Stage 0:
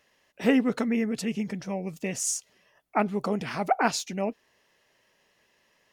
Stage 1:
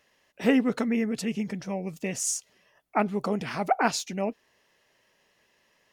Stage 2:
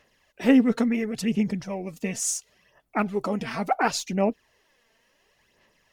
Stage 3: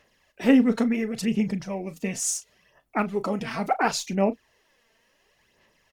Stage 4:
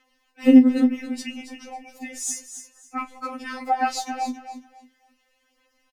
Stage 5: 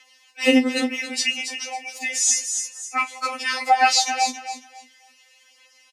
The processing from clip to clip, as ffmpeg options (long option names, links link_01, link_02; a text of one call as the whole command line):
ffmpeg -i in.wav -af anull out.wav
ffmpeg -i in.wav -af "lowshelf=frequency=73:gain=9,aphaser=in_gain=1:out_gain=1:delay=4.5:decay=0.49:speed=0.71:type=sinusoidal" out.wav
ffmpeg -i in.wav -filter_complex "[0:a]asplit=2[link_01][link_02];[link_02]adelay=36,volume=-14dB[link_03];[link_01][link_03]amix=inputs=2:normalize=0" out.wav
ffmpeg -i in.wav -af "aecho=1:1:274|548|822:0.299|0.0687|0.0158,afftfilt=real='re*3.46*eq(mod(b,12),0)':imag='im*3.46*eq(mod(b,12),0)':win_size=2048:overlap=0.75" out.wav
ffmpeg -i in.wav -filter_complex "[0:a]highpass=540,lowpass=7700,acrossover=split=5500[link_01][link_02];[link_02]acompressor=threshold=-45dB:ratio=4:attack=1:release=60[link_03];[link_01][link_03]amix=inputs=2:normalize=0,aexciter=amount=3.6:drive=2.7:freq=2000,volume=6.5dB" out.wav